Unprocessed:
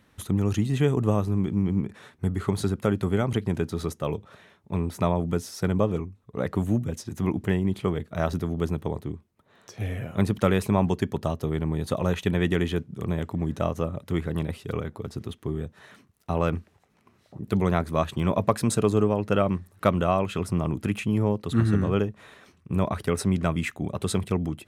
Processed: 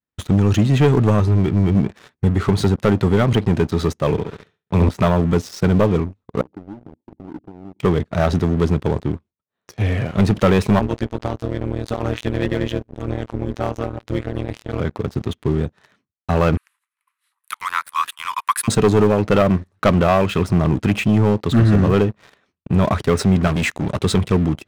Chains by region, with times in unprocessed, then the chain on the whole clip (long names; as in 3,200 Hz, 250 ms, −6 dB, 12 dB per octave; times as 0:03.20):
0:01.20–0:01.75: parametric band 510 Hz −11.5 dB 0.24 octaves + comb filter 2.2 ms, depth 46%
0:04.11–0:04.89: flutter between parallel walls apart 11.7 metres, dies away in 0.99 s + multiband upward and downward expander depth 40%
0:06.41–0:07.80: downward compressor 5 to 1, threshold −32 dBFS + formant resonators in series u
0:10.79–0:14.80: phases set to zero 115 Hz + amplitude modulation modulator 190 Hz, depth 85%
0:16.57–0:18.68: Butterworth high-pass 970 Hz 72 dB per octave + high shelf with overshoot 8,000 Hz +13.5 dB, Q 3 + one half of a high-frequency compander encoder only
0:23.47–0:24.01: high-shelf EQ 4,500 Hz +10.5 dB + hard clipping −27 dBFS
whole clip: downward expander −46 dBFS; low-pass filter 5,900 Hz 12 dB per octave; leveller curve on the samples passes 3